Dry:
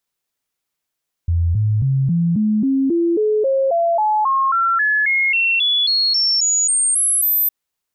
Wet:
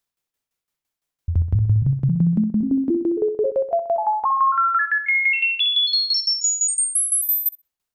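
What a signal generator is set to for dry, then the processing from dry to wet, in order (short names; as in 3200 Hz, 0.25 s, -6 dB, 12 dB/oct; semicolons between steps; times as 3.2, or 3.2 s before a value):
stepped sine 84.8 Hz up, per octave 3, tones 23, 0.27 s, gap 0.00 s -13.5 dBFS
low shelf 88 Hz +7 dB; tremolo saw down 5.9 Hz, depth 85%; on a send: darkening echo 64 ms, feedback 47%, low-pass 4900 Hz, level -8 dB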